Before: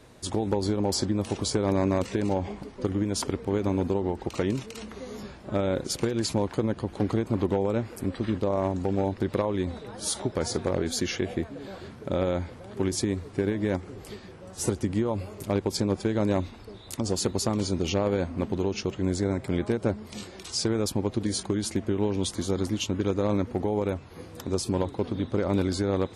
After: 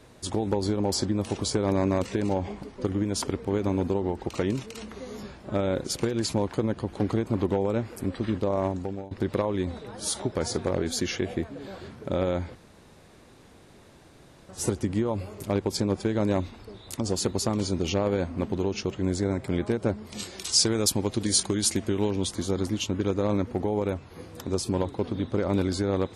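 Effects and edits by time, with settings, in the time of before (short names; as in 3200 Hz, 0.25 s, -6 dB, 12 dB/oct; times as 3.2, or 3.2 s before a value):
8.66–9.11 fade out, to -23 dB
12.55–14.49 room tone
20.19–22.11 high shelf 2900 Hz +11 dB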